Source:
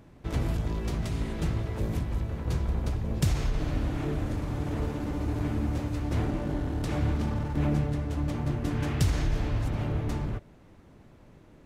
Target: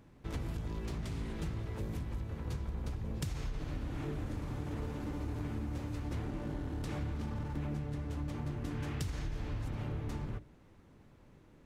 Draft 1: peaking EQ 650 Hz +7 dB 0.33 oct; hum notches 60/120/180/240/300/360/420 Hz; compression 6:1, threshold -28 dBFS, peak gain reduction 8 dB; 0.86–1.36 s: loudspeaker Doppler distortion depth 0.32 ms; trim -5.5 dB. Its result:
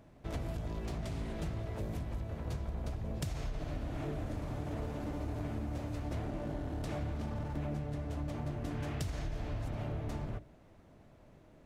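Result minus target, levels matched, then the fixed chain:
500 Hz band +3.0 dB
peaking EQ 650 Hz -4.5 dB 0.33 oct; hum notches 60/120/180/240/300/360/420 Hz; compression 6:1, threshold -28 dBFS, peak gain reduction 7.5 dB; 0.86–1.36 s: loudspeaker Doppler distortion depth 0.32 ms; trim -5.5 dB

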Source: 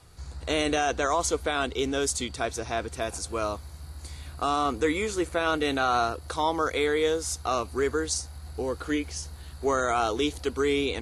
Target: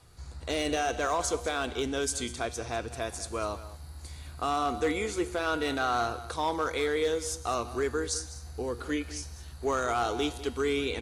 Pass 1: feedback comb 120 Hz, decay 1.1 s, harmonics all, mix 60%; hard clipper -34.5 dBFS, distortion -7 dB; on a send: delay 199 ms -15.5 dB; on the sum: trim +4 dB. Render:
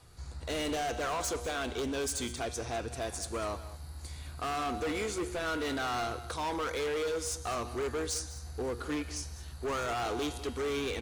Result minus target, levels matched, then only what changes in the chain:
hard clipper: distortion +13 dB
change: hard clipper -25 dBFS, distortion -20 dB

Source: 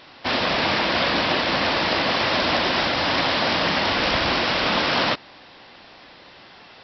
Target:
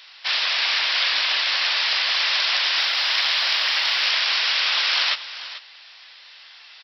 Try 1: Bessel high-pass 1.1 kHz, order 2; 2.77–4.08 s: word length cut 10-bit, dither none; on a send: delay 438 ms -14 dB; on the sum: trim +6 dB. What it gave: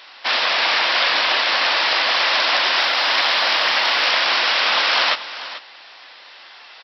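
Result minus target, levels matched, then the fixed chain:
1 kHz band +7.0 dB
Bessel high-pass 2.7 kHz, order 2; 2.77–4.08 s: word length cut 10-bit, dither none; on a send: delay 438 ms -14 dB; on the sum: trim +6 dB

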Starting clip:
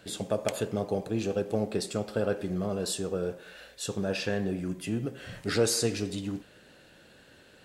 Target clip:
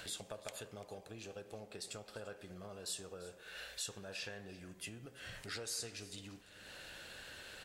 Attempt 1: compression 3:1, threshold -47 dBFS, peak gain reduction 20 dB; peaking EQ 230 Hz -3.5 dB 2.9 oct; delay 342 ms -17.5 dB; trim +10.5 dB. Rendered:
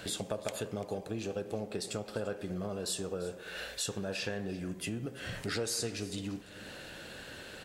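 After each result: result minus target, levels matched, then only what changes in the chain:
250 Hz band +6.0 dB; compression: peak gain reduction -6 dB
change: peaking EQ 230 Hz -13 dB 2.9 oct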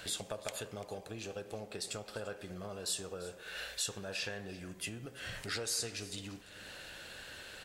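compression: peak gain reduction -6 dB
change: compression 3:1, threshold -56 dBFS, peak gain reduction 26 dB

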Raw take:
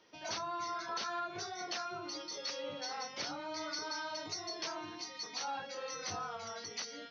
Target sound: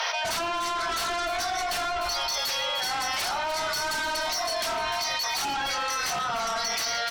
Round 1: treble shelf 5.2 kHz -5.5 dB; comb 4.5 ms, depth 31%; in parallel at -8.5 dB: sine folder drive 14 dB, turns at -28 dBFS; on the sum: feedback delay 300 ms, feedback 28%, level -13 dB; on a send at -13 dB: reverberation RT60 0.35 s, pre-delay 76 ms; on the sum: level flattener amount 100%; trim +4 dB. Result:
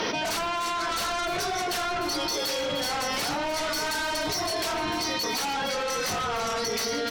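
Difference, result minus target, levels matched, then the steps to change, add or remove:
500 Hz band +3.5 dB
add first: Chebyshev high-pass 670 Hz, order 4

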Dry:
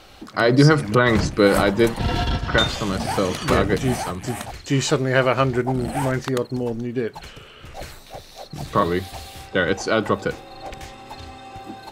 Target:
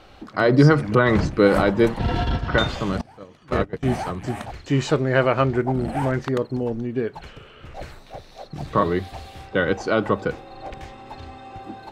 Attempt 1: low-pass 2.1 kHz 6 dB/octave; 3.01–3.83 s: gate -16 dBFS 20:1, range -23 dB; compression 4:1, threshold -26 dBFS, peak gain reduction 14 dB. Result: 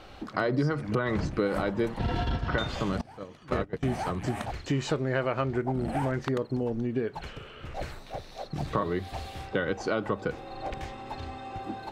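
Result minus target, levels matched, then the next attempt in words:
compression: peak gain reduction +14 dB
low-pass 2.1 kHz 6 dB/octave; 3.01–3.83 s: gate -16 dBFS 20:1, range -23 dB

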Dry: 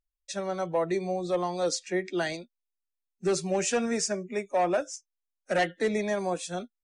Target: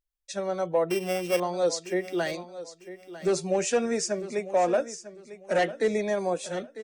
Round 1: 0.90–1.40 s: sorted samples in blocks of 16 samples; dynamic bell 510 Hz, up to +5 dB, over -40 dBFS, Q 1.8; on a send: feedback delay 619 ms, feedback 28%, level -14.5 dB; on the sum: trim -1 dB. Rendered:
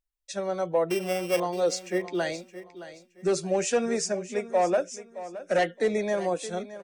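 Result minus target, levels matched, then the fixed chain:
echo 330 ms early
0.90–1.40 s: sorted samples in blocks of 16 samples; dynamic bell 510 Hz, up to +5 dB, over -40 dBFS, Q 1.8; on a send: feedback delay 949 ms, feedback 28%, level -14.5 dB; on the sum: trim -1 dB

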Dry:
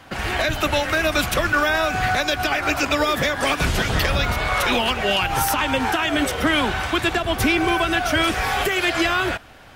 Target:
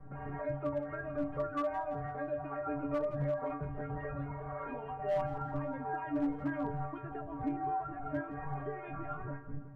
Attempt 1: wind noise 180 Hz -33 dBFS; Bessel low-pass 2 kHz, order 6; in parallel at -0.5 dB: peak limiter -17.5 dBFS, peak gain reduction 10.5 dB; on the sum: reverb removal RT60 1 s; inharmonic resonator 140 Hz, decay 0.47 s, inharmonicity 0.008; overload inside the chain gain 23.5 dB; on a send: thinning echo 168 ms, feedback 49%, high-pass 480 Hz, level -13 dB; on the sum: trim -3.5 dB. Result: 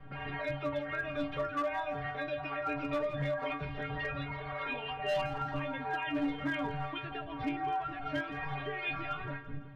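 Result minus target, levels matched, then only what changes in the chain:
2 kHz band +8.0 dB
change: Bessel low-pass 910 Hz, order 6

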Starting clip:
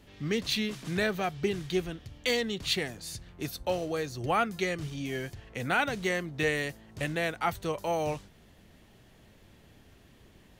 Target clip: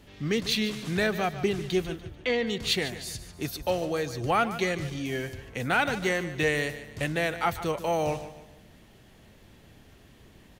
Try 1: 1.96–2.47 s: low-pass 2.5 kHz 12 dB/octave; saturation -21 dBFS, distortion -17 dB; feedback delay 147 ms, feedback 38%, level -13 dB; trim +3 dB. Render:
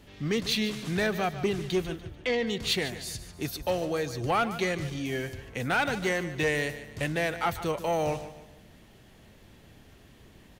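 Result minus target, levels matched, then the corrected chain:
saturation: distortion +12 dB
1.96–2.47 s: low-pass 2.5 kHz 12 dB/octave; saturation -13.5 dBFS, distortion -29 dB; feedback delay 147 ms, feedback 38%, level -13 dB; trim +3 dB

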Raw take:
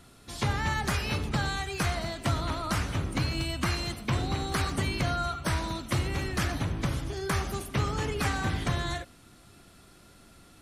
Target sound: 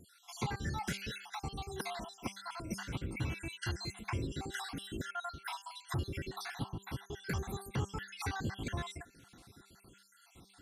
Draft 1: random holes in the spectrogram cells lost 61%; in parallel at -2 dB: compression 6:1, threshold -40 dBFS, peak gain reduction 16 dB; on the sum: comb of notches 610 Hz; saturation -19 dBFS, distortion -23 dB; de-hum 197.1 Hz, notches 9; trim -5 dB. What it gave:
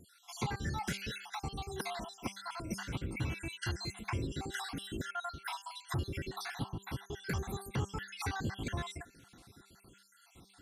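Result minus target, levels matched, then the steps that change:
compression: peak gain reduction -6 dB
change: compression 6:1, threshold -47.5 dBFS, peak gain reduction 22 dB

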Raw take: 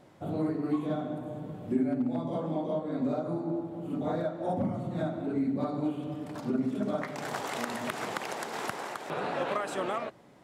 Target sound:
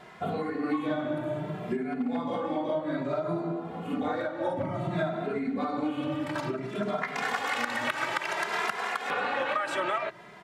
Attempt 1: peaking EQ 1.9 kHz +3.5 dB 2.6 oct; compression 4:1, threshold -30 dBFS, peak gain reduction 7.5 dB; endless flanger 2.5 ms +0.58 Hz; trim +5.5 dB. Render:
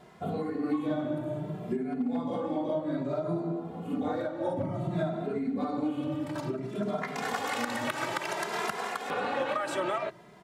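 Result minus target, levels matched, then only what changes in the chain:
2 kHz band -3.5 dB
change: peaking EQ 1.9 kHz +13.5 dB 2.6 oct

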